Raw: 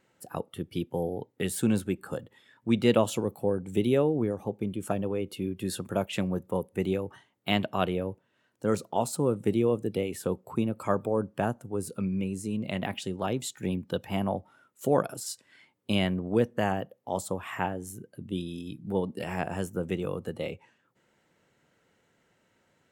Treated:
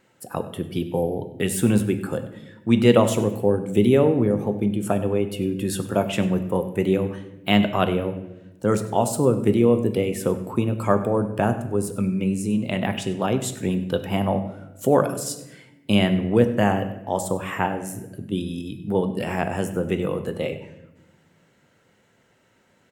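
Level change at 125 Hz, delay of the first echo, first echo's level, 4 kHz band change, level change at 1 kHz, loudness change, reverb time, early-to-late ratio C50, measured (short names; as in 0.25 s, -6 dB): +8.5 dB, 98 ms, -17.0 dB, +6.0 dB, +7.0 dB, +7.5 dB, 1.0 s, 11.0 dB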